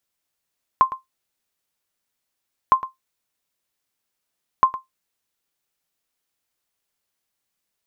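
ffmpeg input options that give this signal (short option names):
-f lavfi -i "aevalsrc='0.562*(sin(2*PI*1050*mod(t,1.91))*exp(-6.91*mod(t,1.91)/0.15)+0.178*sin(2*PI*1050*max(mod(t,1.91)-0.11,0))*exp(-6.91*max(mod(t,1.91)-0.11,0)/0.15))':d=5.73:s=44100"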